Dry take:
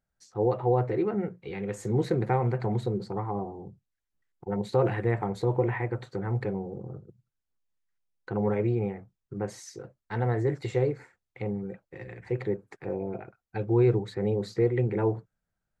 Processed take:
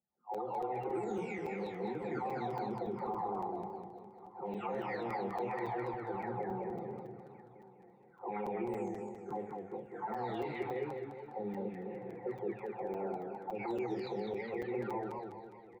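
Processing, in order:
every frequency bin delayed by itself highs early, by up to 803 ms
low-pass that shuts in the quiet parts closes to 410 Hz, open at −24.5 dBFS
downward compressor 4 to 1, threshold −35 dBFS, peak gain reduction 13 dB
parametric band 1,300 Hz +7 dB 2.5 octaves
low-pass that shuts in the quiet parts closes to 1,200 Hz, open at −33 dBFS
loudspeaker in its box 150–7,500 Hz, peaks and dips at 230 Hz +4 dB, 380 Hz +3 dB, 820 Hz +10 dB, 1,600 Hz −5 dB, 2,300 Hz +7 dB, 3,500 Hz +7 dB
repeating echo 1,150 ms, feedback 24%, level −22 dB
on a send at −9.5 dB: convolution reverb RT60 0.35 s, pre-delay 4 ms
on the sum: brickwall limiter −27 dBFS, peak gain reduction 11.5 dB
regular buffer underruns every 0.28 s, samples 256, zero, from 0:00.34
feedback echo with a swinging delay time 205 ms, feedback 47%, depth 124 cents, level −4 dB
level −4 dB

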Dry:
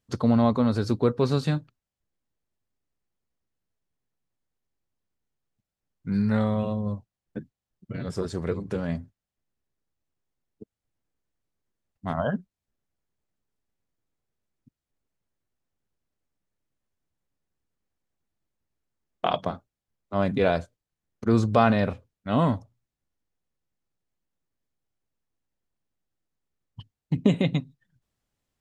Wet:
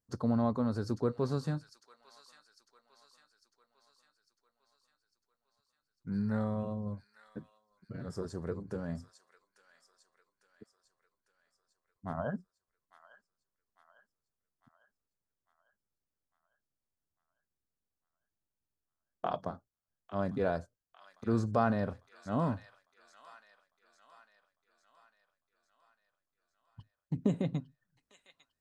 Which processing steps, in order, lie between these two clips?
flat-topped bell 2,800 Hz −10 dB 1.1 octaves
on a send: delay with a high-pass on its return 851 ms, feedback 54%, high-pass 2,000 Hz, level −8 dB
on the sum: level −9 dB

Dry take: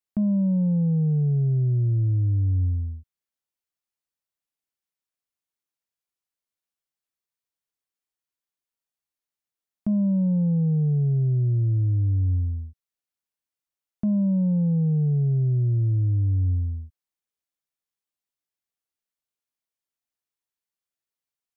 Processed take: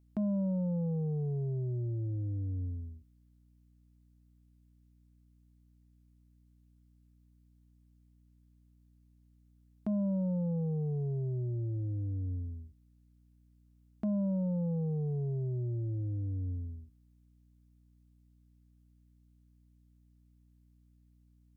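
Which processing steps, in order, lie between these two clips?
bass and treble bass −14 dB, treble +1 dB
mains hum 60 Hz, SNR 27 dB

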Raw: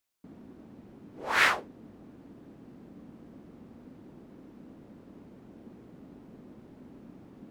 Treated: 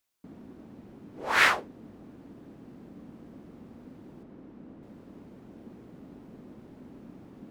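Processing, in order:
0:04.23–0:04.83: high-shelf EQ 4,400 Hz −11.5 dB
level +2 dB

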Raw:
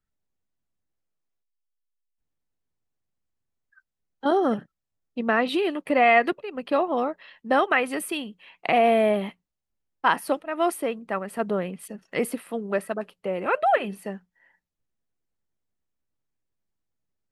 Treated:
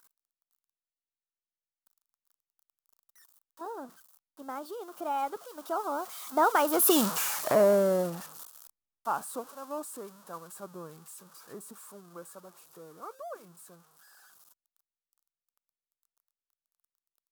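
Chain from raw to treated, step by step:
spike at every zero crossing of −14.5 dBFS
source passing by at 0:07.01, 52 m/s, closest 7.3 metres
high shelf with overshoot 1,600 Hz −9 dB, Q 3
level +8.5 dB

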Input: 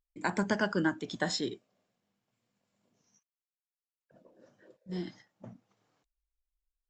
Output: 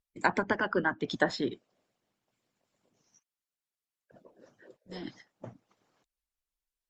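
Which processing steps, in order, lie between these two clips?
treble cut that deepens with the level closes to 2,100 Hz, closed at −27.5 dBFS
harmonic and percussive parts rebalanced harmonic −16 dB
level +6.5 dB

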